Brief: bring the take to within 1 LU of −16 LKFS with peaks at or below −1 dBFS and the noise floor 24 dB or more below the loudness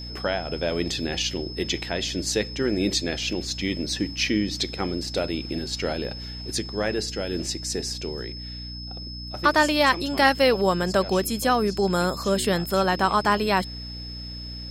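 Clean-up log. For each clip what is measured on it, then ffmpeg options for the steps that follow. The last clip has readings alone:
mains hum 60 Hz; hum harmonics up to 300 Hz; level of the hum −35 dBFS; interfering tone 5,200 Hz; level of the tone −37 dBFS; integrated loudness −24.5 LKFS; sample peak −5.5 dBFS; target loudness −16.0 LKFS
→ -af "bandreject=frequency=60:width_type=h:width=6,bandreject=frequency=120:width_type=h:width=6,bandreject=frequency=180:width_type=h:width=6,bandreject=frequency=240:width_type=h:width=6,bandreject=frequency=300:width_type=h:width=6"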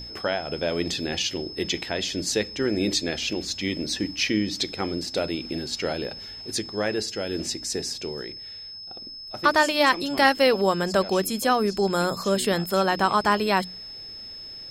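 mains hum none found; interfering tone 5,200 Hz; level of the tone −37 dBFS
→ -af "bandreject=frequency=5200:width=30"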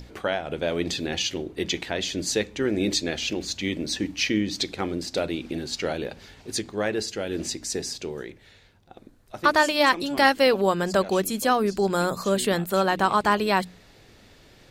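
interfering tone none found; integrated loudness −25.0 LKFS; sample peak −6.0 dBFS; target loudness −16.0 LKFS
→ -af "volume=9dB,alimiter=limit=-1dB:level=0:latency=1"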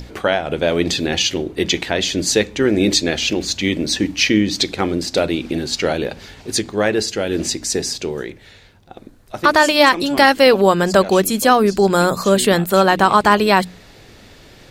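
integrated loudness −16.5 LKFS; sample peak −1.0 dBFS; background noise floor −45 dBFS

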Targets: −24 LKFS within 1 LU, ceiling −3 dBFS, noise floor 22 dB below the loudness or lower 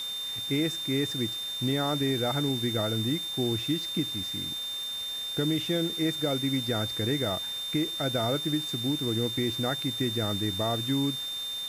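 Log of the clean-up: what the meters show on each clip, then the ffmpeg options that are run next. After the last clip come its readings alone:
interfering tone 3,600 Hz; level of the tone −32 dBFS; background noise floor −35 dBFS; target noise floor −51 dBFS; integrated loudness −28.5 LKFS; sample peak −16.0 dBFS; target loudness −24.0 LKFS
→ -af "bandreject=frequency=3600:width=30"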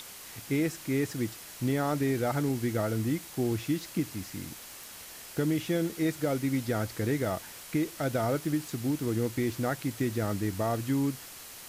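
interfering tone none found; background noise floor −46 dBFS; target noise floor −53 dBFS
→ -af "afftdn=noise_reduction=7:noise_floor=-46"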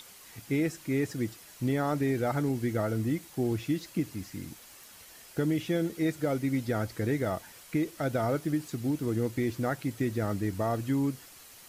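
background noise floor −52 dBFS; target noise floor −53 dBFS
→ -af "afftdn=noise_reduction=6:noise_floor=-52"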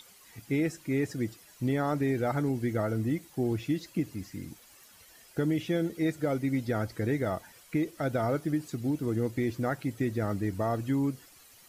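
background noise floor −56 dBFS; integrated loudness −31.0 LKFS; sample peak −17.5 dBFS; target loudness −24.0 LKFS
→ -af "volume=7dB"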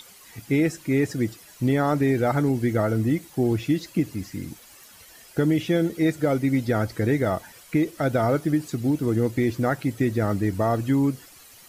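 integrated loudness −24.0 LKFS; sample peak −10.5 dBFS; background noise floor −49 dBFS

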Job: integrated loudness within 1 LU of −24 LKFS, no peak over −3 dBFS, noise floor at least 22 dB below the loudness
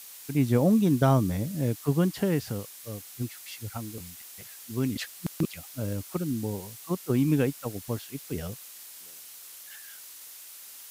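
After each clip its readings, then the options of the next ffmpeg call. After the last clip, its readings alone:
background noise floor −46 dBFS; target noise floor −51 dBFS; integrated loudness −28.5 LKFS; sample peak −11.5 dBFS; target loudness −24.0 LKFS
→ -af "afftdn=noise_reduction=6:noise_floor=-46"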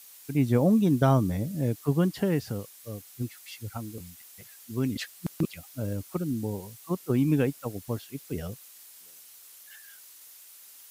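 background noise floor −51 dBFS; integrated loudness −28.5 LKFS; sample peak −11.5 dBFS; target loudness −24.0 LKFS
→ -af "volume=4.5dB"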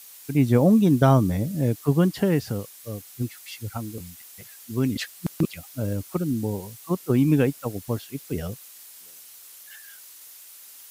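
integrated loudness −24.0 LKFS; sample peak −7.0 dBFS; background noise floor −47 dBFS

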